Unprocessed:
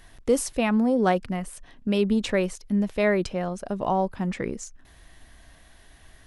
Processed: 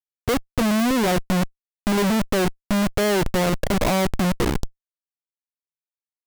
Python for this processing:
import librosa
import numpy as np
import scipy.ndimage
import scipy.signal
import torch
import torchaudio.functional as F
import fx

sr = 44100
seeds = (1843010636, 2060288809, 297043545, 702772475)

y = fx.env_lowpass_down(x, sr, base_hz=700.0, full_db=-21.0)
y = fx.schmitt(y, sr, flips_db=-31.5)
y = y * librosa.db_to_amplitude(8.0)